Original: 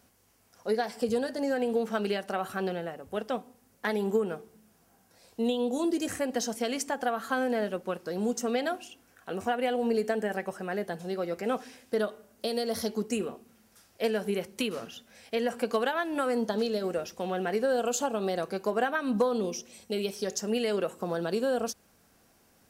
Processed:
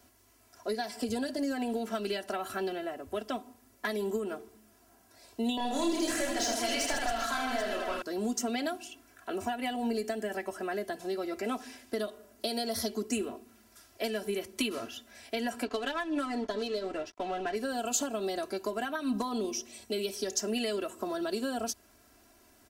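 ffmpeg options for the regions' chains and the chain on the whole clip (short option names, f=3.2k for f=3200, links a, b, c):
-filter_complex "[0:a]asettb=1/sr,asplit=3[a][b][c];[a]atrim=end=5.574[d];[b]atrim=start=5.57:end=8.02,asetpts=PTS-STARTPTS,afade=t=in:d=0.004:c=qsin,afade=t=out:st=2.446:d=0.004:c=qsin,lowshelf=f=430:g=-11,asplit=2[e][f];[f]highpass=f=720:p=1,volume=20dB,asoftclip=type=tanh:threshold=-17dB[g];[e][g]amix=inputs=2:normalize=0,lowpass=f=1.6k:p=1,volume=-6dB,aecho=1:1:30|78|154.8|277.7|474.3|788.9:0.794|0.631|0.501|0.398|0.316|0.251,atrim=end_sample=108045[h];[c]atrim=start=8.016[i];[d][h]acrossfade=d=0.004:c1=hsin:c2=qsin[j];[j][i]acrossfade=d=0.004:c1=qsin:c2=hsin,asettb=1/sr,asplit=3[k][l][m];[k]atrim=end=15.654[n];[l]atrim=start=15.65:end=17.56,asetpts=PTS-STARTPTS,afade=t=in:d=0.004:c=qsin,afade=t=out:st=1.906:d=0.004:c=qsin,aecho=1:1:6.9:0.51,atrim=end_sample=84231,aeval=exprs='sgn(val(0))*max(abs(val(0))-0.00473,0)':c=same,adynamicsmooth=sensitivity=4.5:basefreq=4.4k[o];[m]atrim=start=17.556[p];[n][o]acrossfade=d=0.004:c1=hsin:c2=qsin[q];[q][p]acrossfade=d=0.004:c1=qsin:c2=hsin,aecho=1:1:3:0.87,acrossover=split=210|3000[r][s][t];[s]acompressor=threshold=-32dB:ratio=6[u];[r][u][t]amix=inputs=3:normalize=0"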